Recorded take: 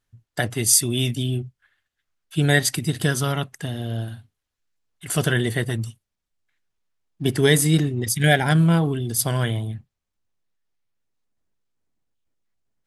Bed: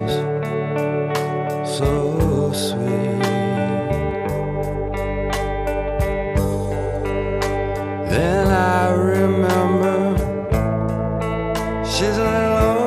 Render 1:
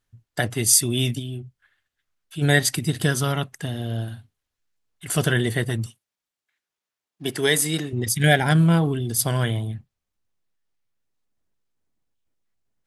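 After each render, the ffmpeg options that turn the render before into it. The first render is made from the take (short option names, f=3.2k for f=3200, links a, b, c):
-filter_complex "[0:a]asplit=3[a][b][c];[a]afade=t=out:st=1.18:d=0.02[d];[b]acompressor=threshold=-42dB:ratio=1.5:attack=3.2:release=140:knee=1:detection=peak,afade=t=in:st=1.18:d=0.02,afade=t=out:st=2.41:d=0.02[e];[c]afade=t=in:st=2.41:d=0.02[f];[d][e][f]amix=inputs=3:normalize=0,asettb=1/sr,asplit=3[g][h][i];[g]atrim=end=5.864[j];[h]atrim=start=5.86:end=7.93,asetpts=PTS-STARTPTS,afade=t=in:d=0.004:c=qsin,afade=t=out:st=2.066:d=0.004:c=qsin,highpass=f=500:p=1[k];[i]atrim=start=7.926[l];[j][k]acrossfade=d=0.004:c1=hsin:c2=qsin[m];[m][l]acrossfade=d=0.004:c1=qsin:c2=hsin"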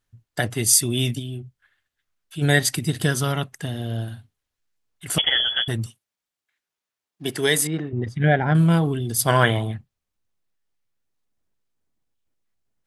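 -filter_complex "[0:a]asettb=1/sr,asplit=3[a][b][c];[a]atrim=end=5.184[d];[b]atrim=start=5.18:end=5.68,asetpts=PTS-STARTPTS,afade=t=in:d=0.004:c=qsin,afade=t=out:st=0.496:d=0.004:c=qsin,lowpass=f=3k:t=q:w=0.5098,lowpass=f=3k:t=q:w=0.6013,lowpass=f=3k:t=q:w=0.9,lowpass=f=3k:t=q:w=2.563,afreqshift=-3500[e];[c]atrim=start=5.676[f];[d][e]acrossfade=d=0.004:c1=hsin:c2=qsin[g];[g][f]acrossfade=d=0.004:c1=qsin:c2=hsin,asettb=1/sr,asplit=3[h][i][j];[h]atrim=end=7.674[k];[i]atrim=start=7.67:end=8.55,asetpts=PTS-STARTPTS,afade=t=in:d=0.004:c=qsin,afade=t=out:st=0.876:d=0.004:c=qsin,lowpass=1.6k[l];[j]atrim=start=8.546[m];[k][l]acrossfade=d=0.004:c1=hsin:c2=qsin[n];[n][m]acrossfade=d=0.004:c1=qsin:c2=hsin,asplit=3[o][p][q];[o]afade=t=out:st=9.27:d=0.02[r];[p]equalizer=f=1.1k:t=o:w=2.9:g=13,afade=t=in:st=9.27:d=0.02,afade=t=out:st=9.76:d=0.02[s];[q]afade=t=in:st=9.76:d=0.02[t];[r][s][t]amix=inputs=3:normalize=0"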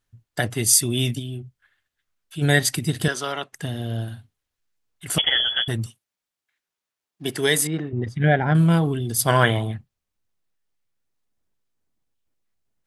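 -filter_complex "[0:a]asettb=1/sr,asplit=3[a][b][c];[a]atrim=end=3.084[d];[b]atrim=start=3.08:end=3.53,asetpts=PTS-STARTPTS,afade=t=in:d=0.004:c=qsin,afade=t=out:st=0.446:d=0.004:c=qsin,acrossover=split=310 7900:gain=0.0794 1 0.141[e][f][g];[e][f][g]amix=inputs=3:normalize=0[h];[c]atrim=start=3.526[i];[d][h]acrossfade=d=0.004:c1=hsin:c2=qsin[j];[j][i]acrossfade=d=0.004:c1=qsin:c2=hsin"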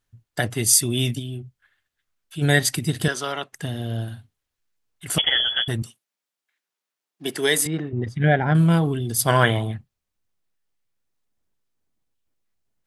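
-filter_complex "[0:a]asettb=1/sr,asplit=3[a][b][c];[a]atrim=end=5.824[d];[b]atrim=start=5.82:end=7.66,asetpts=PTS-STARTPTS,afade=t=in:d=0.004:c=qsin,afade=t=out:st=1.836:d=0.004:c=qsin,highpass=200[e];[c]atrim=start=7.656[f];[d][e]acrossfade=d=0.004:c1=hsin:c2=qsin[g];[g][f]acrossfade=d=0.004:c1=qsin:c2=hsin"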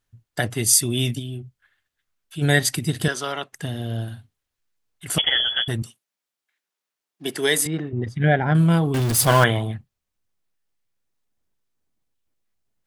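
-filter_complex "[0:a]asettb=1/sr,asplit=3[a][b][c];[a]atrim=end=8.944[d];[b]atrim=start=8.94:end=9.44,asetpts=PTS-STARTPTS,afade=t=in:d=0.004:c=qsin,afade=t=out:st=0.496:d=0.004:c=qsin,aeval=exprs='val(0)+0.5*0.1*sgn(val(0))':c=same[e];[c]atrim=start=9.436[f];[d][e]acrossfade=d=0.004:c1=hsin:c2=qsin[g];[g][f]acrossfade=d=0.004:c1=qsin:c2=hsin"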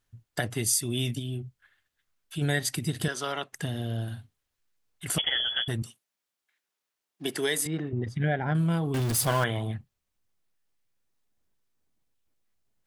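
-af "acompressor=threshold=-30dB:ratio=2"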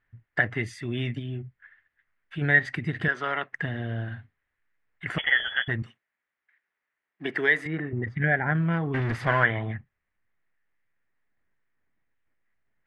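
-af "lowpass=f=1.9k:t=q:w=4.3"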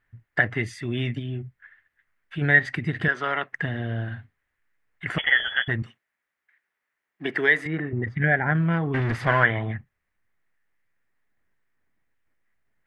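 -af "volume=2.5dB"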